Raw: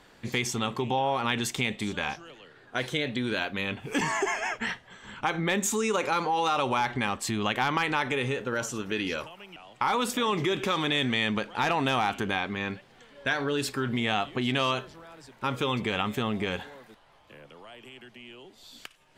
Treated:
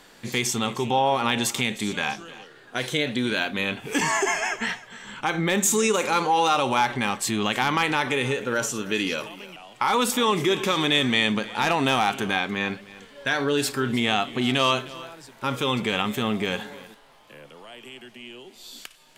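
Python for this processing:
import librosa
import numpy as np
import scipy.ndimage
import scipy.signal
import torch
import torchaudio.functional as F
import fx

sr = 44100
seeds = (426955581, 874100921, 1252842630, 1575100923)

p1 = fx.peak_eq(x, sr, hz=73.0, db=-12.5, octaves=0.98)
p2 = fx.hpss(p1, sr, part='harmonic', gain_db=6)
p3 = fx.high_shelf(p2, sr, hz=4900.0, db=9.0)
y = p3 + fx.echo_single(p3, sr, ms=308, db=-18.5, dry=0)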